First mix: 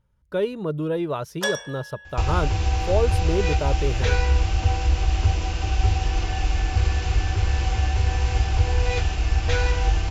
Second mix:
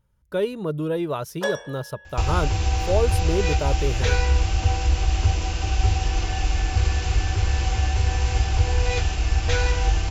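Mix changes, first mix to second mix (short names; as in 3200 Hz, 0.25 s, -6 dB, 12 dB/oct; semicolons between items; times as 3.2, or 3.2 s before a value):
first sound: add tilt -4.5 dB/oct; master: add high shelf 8600 Hz +12 dB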